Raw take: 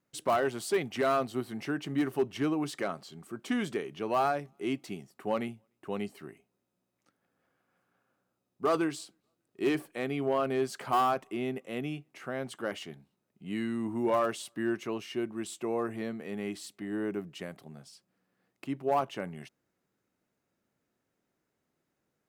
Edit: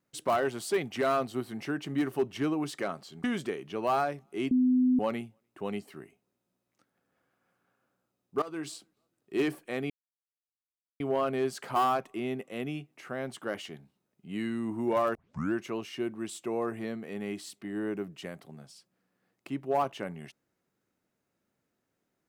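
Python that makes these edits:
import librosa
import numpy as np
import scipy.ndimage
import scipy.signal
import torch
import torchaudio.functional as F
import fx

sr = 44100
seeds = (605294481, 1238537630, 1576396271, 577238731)

y = fx.edit(x, sr, fx.cut(start_s=3.24, length_s=0.27),
    fx.bleep(start_s=4.78, length_s=0.48, hz=253.0, db=-20.5),
    fx.fade_in_from(start_s=8.69, length_s=0.26, curve='qua', floor_db=-17.0),
    fx.insert_silence(at_s=10.17, length_s=1.1),
    fx.tape_start(start_s=14.32, length_s=0.38), tone=tone)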